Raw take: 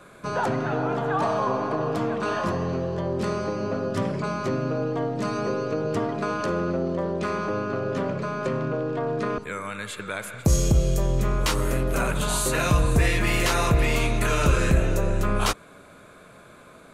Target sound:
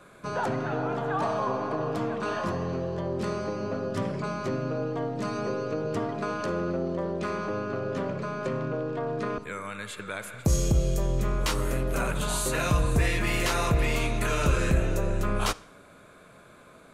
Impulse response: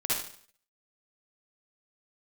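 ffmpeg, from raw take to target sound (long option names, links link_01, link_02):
-filter_complex "[0:a]asplit=2[link_01][link_02];[link_02]lowpass=9100[link_03];[1:a]atrim=start_sample=2205[link_04];[link_03][link_04]afir=irnorm=-1:irlink=0,volume=-27.5dB[link_05];[link_01][link_05]amix=inputs=2:normalize=0,volume=-4dB"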